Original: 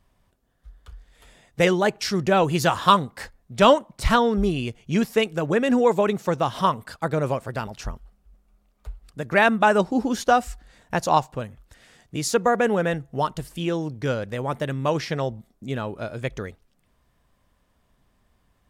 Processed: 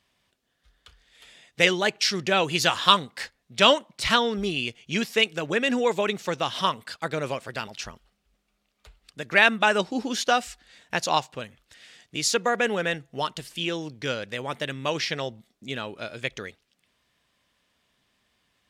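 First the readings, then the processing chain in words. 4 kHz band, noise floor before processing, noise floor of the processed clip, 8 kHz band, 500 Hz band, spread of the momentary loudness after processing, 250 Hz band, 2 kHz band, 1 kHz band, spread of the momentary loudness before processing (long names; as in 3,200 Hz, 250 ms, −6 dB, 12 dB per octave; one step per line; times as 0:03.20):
+6.5 dB, −67 dBFS, −74 dBFS, +2.5 dB, −5.0 dB, 17 LU, −6.5 dB, +2.5 dB, −4.5 dB, 16 LU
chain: meter weighting curve D
level −4.5 dB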